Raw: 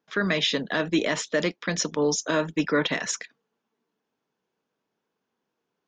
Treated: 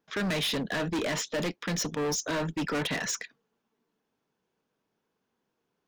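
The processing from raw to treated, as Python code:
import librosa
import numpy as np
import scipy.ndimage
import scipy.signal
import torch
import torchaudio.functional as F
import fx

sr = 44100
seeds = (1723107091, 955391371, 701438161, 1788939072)

y = fx.low_shelf(x, sr, hz=97.0, db=11.0)
y = np.clip(y, -10.0 ** (-27.0 / 20.0), 10.0 ** (-27.0 / 20.0))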